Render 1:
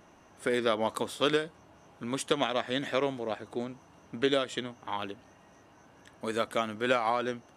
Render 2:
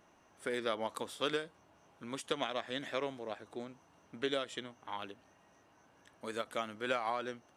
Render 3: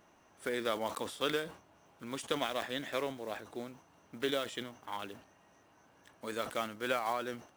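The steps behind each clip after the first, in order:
low-shelf EQ 380 Hz −4.5 dB; every ending faded ahead of time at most 440 dB per second; level −6.5 dB
one scale factor per block 5 bits; level that may fall only so fast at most 130 dB per second; level +1 dB

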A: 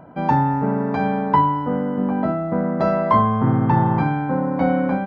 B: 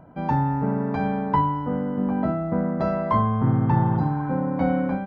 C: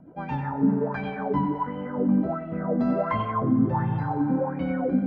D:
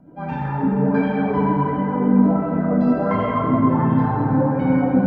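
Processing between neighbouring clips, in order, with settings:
healed spectral selection 0:03.93–0:04.27, 880–3,600 Hz both; low-shelf EQ 110 Hz +11.5 dB; automatic gain control gain up to 3.5 dB; level −7 dB
rotating-speaker cabinet horn 8 Hz, later 0.85 Hz, at 0:01.07; on a send: tape delay 91 ms, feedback 69%, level −4.5 dB, low-pass 3,400 Hz; on the sum: auto-filter bell 1.4 Hz 220–3,000 Hz +16 dB; level −6.5 dB
dense smooth reverb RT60 4 s, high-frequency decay 0.45×, DRR −4.5 dB

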